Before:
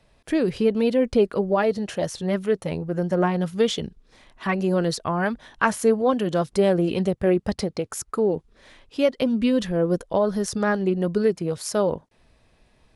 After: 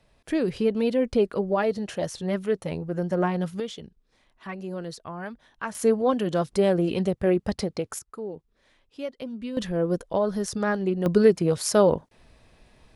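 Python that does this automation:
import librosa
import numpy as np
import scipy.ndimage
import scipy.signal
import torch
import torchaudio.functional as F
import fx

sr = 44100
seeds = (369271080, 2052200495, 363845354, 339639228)

y = fx.gain(x, sr, db=fx.steps((0.0, -3.0), (3.6, -12.0), (5.75, -2.0), (7.99, -13.0), (9.57, -3.0), (11.06, 3.5)))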